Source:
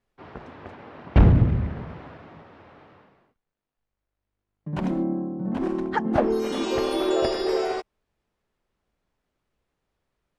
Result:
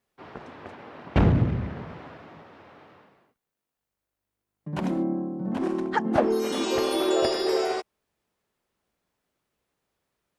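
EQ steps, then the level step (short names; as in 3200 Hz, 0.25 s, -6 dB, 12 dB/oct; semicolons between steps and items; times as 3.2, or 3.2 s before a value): HPF 140 Hz 6 dB/oct; high shelf 6200 Hz +8.5 dB; 0.0 dB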